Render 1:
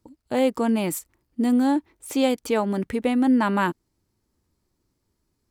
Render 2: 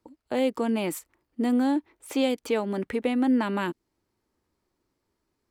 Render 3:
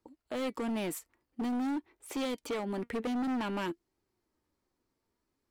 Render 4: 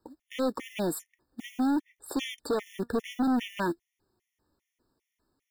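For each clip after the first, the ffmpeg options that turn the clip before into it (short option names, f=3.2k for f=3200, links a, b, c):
-filter_complex "[0:a]bass=f=250:g=-10,treble=f=4k:g=-8,acrossover=split=450|2300[a][b][c];[b]acompressor=threshold=-33dB:ratio=6[d];[a][d][c]amix=inputs=3:normalize=0,volume=1.5dB"
-af "flanger=delay=2.4:depth=2.1:regen=77:speed=0.5:shape=triangular,asoftclip=type=hard:threshold=-30.5dB"
-af "acrusher=bits=5:mode=log:mix=0:aa=0.000001,afftfilt=real='re*gt(sin(2*PI*2.5*pts/sr)*(1-2*mod(floor(b*sr/1024/1800),2)),0)':imag='im*gt(sin(2*PI*2.5*pts/sr)*(1-2*mod(floor(b*sr/1024/1800),2)),0)':win_size=1024:overlap=0.75,volume=6.5dB"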